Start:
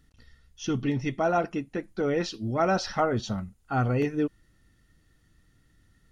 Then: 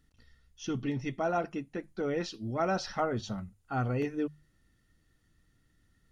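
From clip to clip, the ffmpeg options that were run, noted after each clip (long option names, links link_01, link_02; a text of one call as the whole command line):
ffmpeg -i in.wav -af "bandreject=frequency=50:width_type=h:width=6,bandreject=frequency=100:width_type=h:width=6,bandreject=frequency=150:width_type=h:width=6,volume=-5.5dB" out.wav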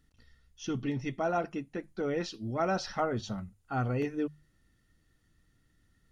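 ffmpeg -i in.wav -af anull out.wav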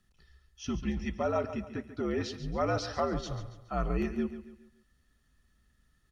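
ffmpeg -i in.wav -af "aecho=1:1:140|280|420|560:0.251|0.103|0.0422|0.0173,afreqshift=-75" out.wav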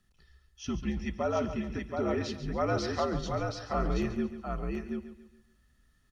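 ffmpeg -i in.wav -af "aecho=1:1:728:0.631" out.wav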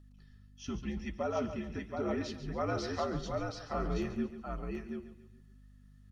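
ffmpeg -i in.wav -af "aeval=exprs='val(0)+0.00282*(sin(2*PI*50*n/s)+sin(2*PI*2*50*n/s)/2+sin(2*PI*3*50*n/s)/3+sin(2*PI*4*50*n/s)/4+sin(2*PI*5*50*n/s)/5)':channel_layout=same,flanger=delay=3.2:depth=8.6:regen=65:speed=0.88:shape=sinusoidal" out.wav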